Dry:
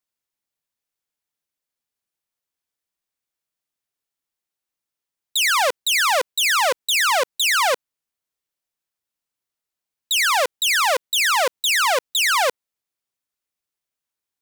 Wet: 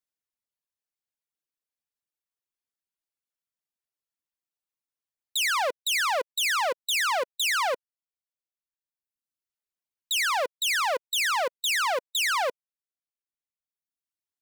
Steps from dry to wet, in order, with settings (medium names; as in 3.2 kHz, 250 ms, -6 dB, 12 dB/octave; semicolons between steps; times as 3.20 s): reverb removal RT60 1.3 s; trim -6.5 dB